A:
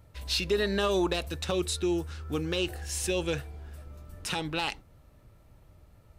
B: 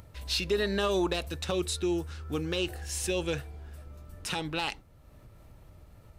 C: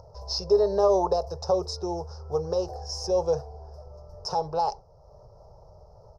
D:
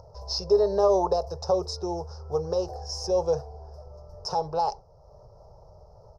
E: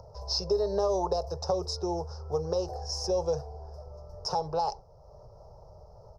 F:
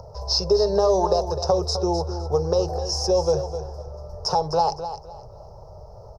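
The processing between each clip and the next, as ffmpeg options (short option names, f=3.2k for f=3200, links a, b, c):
-af "acompressor=mode=upward:threshold=-44dB:ratio=2.5,volume=-1dB"
-af "firequalizer=gain_entry='entry(160,0);entry(280,-21);entry(410,9);entry(630,12);entry(910,11);entry(1500,-13);entry(2100,-29);entry(3400,-25);entry(5200,11);entry(7900,-21)':delay=0.05:min_phase=1"
-af anull
-filter_complex "[0:a]acrossover=split=150|3000[a][b][c];[b]acompressor=threshold=-26dB:ratio=3[d];[a][d][c]amix=inputs=3:normalize=0"
-af "aecho=1:1:256|512|768:0.299|0.0746|0.0187,volume=8dB"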